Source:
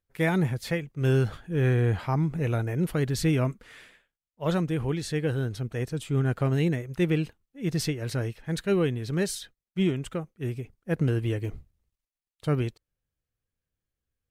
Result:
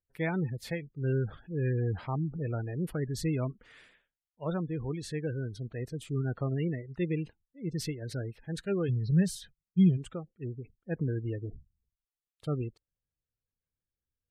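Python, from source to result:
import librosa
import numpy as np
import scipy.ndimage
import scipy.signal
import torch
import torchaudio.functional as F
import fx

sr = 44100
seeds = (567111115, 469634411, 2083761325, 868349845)

y = fx.spec_gate(x, sr, threshold_db=-25, keep='strong')
y = fx.low_shelf_res(y, sr, hz=220.0, db=7.0, q=3.0, at=(8.88, 9.96), fade=0.02)
y = y * 10.0 ** (-6.5 / 20.0)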